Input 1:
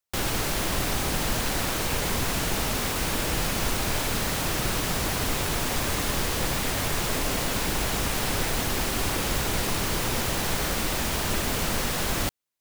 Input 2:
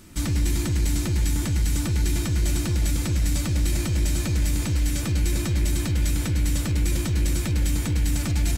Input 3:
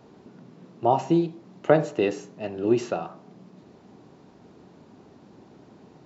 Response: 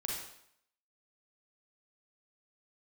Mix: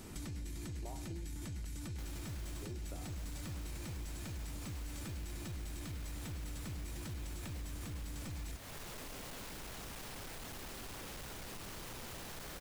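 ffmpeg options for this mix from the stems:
-filter_complex "[0:a]asoftclip=type=tanh:threshold=-26.5dB,adelay=1850,volume=-11dB[a];[1:a]alimiter=level_in=3.5dB:limit=-24dB:level=0:latency=1,volume=-3.5dB,volume=-3dB[b];[2:a]volume=-5.5dB,asplit=3[c][d][e];[c]atrim=end=1.65,asetpts=PTS-STARTPTS,afade=t=out:st=1.646:d=0.004:c=hsin[f];[d]atrim=start=1.65:end=2.62,asetpts=PTS-STARTPTS,volume=0[g];[e]atrim=start=2.62,asetpts=PTS-STARTPTS,afade=t=in:d=0.004:c=hsin[h];[f][g][h]concat=n=3:v=0:a=1[i];[a][i]amix=inputs=2:normalize=0,acompressor=threshold=-46dB:ratio=3,volume=0dB[j];[b][j]amix=inputs=2:normalize=0,acompressor=threshold=-43dB:ratio=3"

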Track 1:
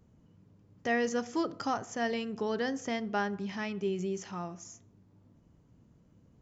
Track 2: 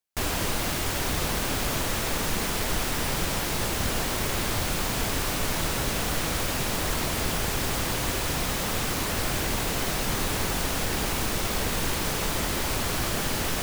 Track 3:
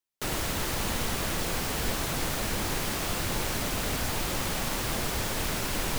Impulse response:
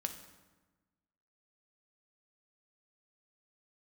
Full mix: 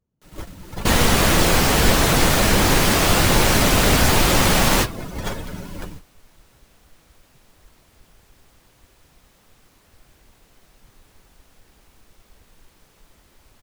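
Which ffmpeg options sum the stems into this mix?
-filter_complex "[0:a]flanger=delay=1.6:depth=9.8:regen=41:speed=1.6:shape=sinusoidal,volume=2dB,asplit=2[a][b];[1:a]adelay=750,volume=-16dB[c];[2:a]dynaudnorm=f=440:g=3:m=11.5dB,volume=2dB,asplit=2[d][e];[e]volume=-13dB[f];[b]apad=whole_len=264145[g];[d][g]sidechaingate=range=-33dB:threshold=-59dB:ratio=16:detection=peak[h];[3:a]atrim=start_sample=2205[i];[f][i]afir=irnorm=-1:irlink=0[j];[a][c][h][j]amix=inputs=4:normalize=0,afftdn=nr=13:nf=-28"

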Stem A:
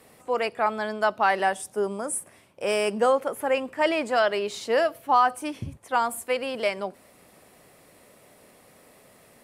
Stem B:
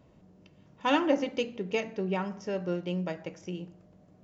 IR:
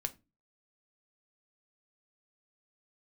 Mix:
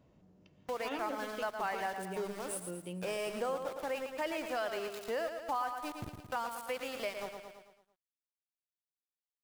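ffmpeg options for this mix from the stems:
-filter_complex "[0:a]aeval=exprs='val(0)*gte(abs(val(0)),0.0299)':c=same,agate=range=-33dB:threshold=-44dB:ratio=3:detection=peak,adelay=400,volume=-3dB,asplit=2[a][b];[b]volume=-8.5dB[c];[1:a]volume=-6dB[d];[c]aecho=0:1:111|222|333|444|555|666:1|0.45|0.202|0.0911|0.041|0.0185[e];[a][d][e]amix=inputs=3:normalize=0,acompressor=threshold=-42dB:ratio=2"

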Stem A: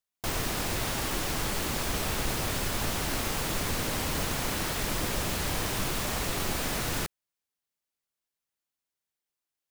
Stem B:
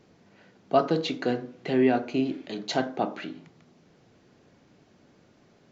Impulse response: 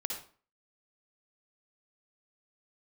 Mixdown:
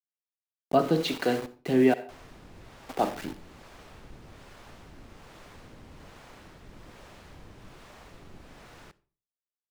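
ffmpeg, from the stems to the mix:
-filter_complex "[0:a]acrossover=split=9000[a][b];[b]acompressor=threshold=-43dB:ratio=4:attack=1:release=60[c];[a][c]amix=inputs=2:normalize=0,highshelf=f=3.7k:g=-11.5,adelay=1850,volume=-16dB,asplit=2[d][e];[e]volume=-16.5dB[f];[1:a]aeval=exprs='val(0)*gte(abs(val(0)),0.0158)':c=same,volume=1dB,asplit=3[g][h][i];[g]atrim=end=1.94,asetpts=PTS-STARTPTS,afade=t=out:st=1.936:d=0.004:c=hsin[j];[h]atrim=start=1.94:end=2.89,asetpts=PTS-STARTPTS,volume=0[k];[i]atrim=start=2.89,asetpts=PTS-STARTPTS,afade=t=in:d=0.004:c=hsin[l];[j][k][l]concat=n=3:v=0:a=1,asplit=2[m][n];[n]volume=-10.5dB[o];[2:a]atrim=start_sample=2205[p];[f][o]amix=inputs=2:normalize=0[q];[q][p]afir=irnorm=-1:irlink=0[r];[d][m][r]amix=inputs=3:normalize=0,acrossover=split=400[s][t];[s]aeval=exprs='val(0)*(1-0.5/2+0.5/2*cos(2*PI*1.2*n/s))':c=same[u];[t]aeval=exprs='val(0)*(1-0.5/2-0.5/2*cos(2*PI*1.2*n/s))':c=same[v];[u][v]amix=inputs=2:normalize=0"

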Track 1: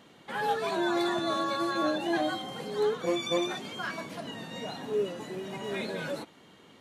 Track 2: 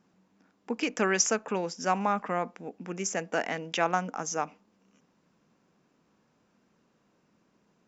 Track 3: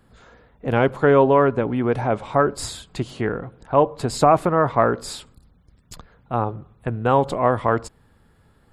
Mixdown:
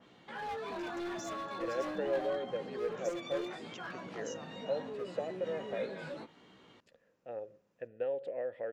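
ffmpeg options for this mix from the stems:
-filter_complex "[0:a]lowpass=5.6k,flanger=delay=16:depth=4.1:speed=0.76,adynamicequalizer=threshold=0.00251:dfrequency=3000:dqfactor=0.7:tfrequency=3000:tqfactor=0.7:attack=5:release=100:ratio=0.375:range=4:mode=cutabove:tftype=highshelf,volume=-1dB[a];[1:a]alimiter=level_in=0.5dB:limit=-24dB:level=0:latency=1,volume=-0.5dB,volume=-10dB[b];[2:a]acompressor=threshold=-16dB:ratio=6,asplit=3[c][d][e];[c]bandpass=f=530:t=q:w=8,volume=0dB[f];[d]bandpass=f=1.84k:t=q:w=8,volume=-6dB[g];[e]bandpass=f=2.48k:t=q:w=8,volume=-9dB[h];[f][g][h]amix=inputs=3:normalize=0,adelay=950,volume=-7dB[i];[a][b]amix=inputs=2:normalize=0,volume=31dB,asoftclip=hard,volume=-31dB,alimiter=level_in=12dB:limit=-24dB:level=0:latency=1:release=87,volume=-12dB,volume=0dB[j];[i][j]amix=inputs=2:normalize=0"

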